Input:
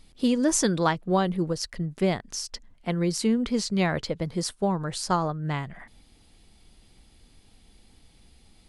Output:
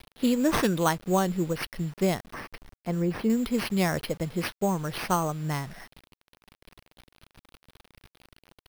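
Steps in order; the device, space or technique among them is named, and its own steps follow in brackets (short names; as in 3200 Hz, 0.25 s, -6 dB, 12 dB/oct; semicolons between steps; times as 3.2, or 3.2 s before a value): early 8-bit sampler (sample-rate reducer 7300 Hz, jitter 0%; bit-crush 8-bit); 2.28–3.3 de-esser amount 95%; gain -1 dB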